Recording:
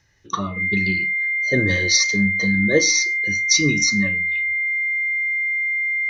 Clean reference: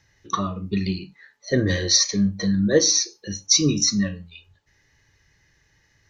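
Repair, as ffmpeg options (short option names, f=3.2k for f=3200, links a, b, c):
-af "bandreject=f=2.1k:w=30"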